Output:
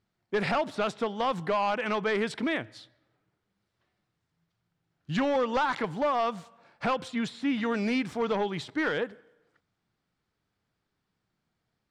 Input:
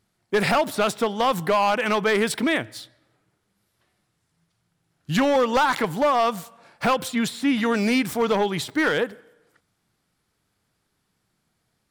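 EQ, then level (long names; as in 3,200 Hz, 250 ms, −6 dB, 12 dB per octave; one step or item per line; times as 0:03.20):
high-frequency loss of the air 97 metres
−6.5 dB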